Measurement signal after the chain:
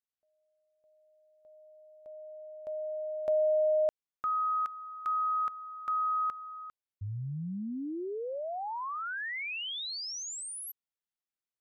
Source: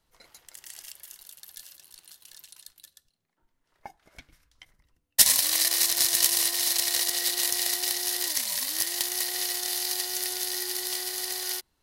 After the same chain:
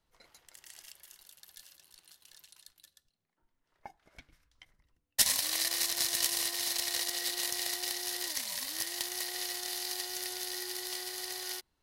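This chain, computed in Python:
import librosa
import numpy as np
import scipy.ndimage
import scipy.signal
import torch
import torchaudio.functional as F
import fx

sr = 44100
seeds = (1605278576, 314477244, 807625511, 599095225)

y = fx.high_shelf(x, sr, hz=6900.0, db=-6.5)
y = y * 10.0 ** (-4.5 / 20.0)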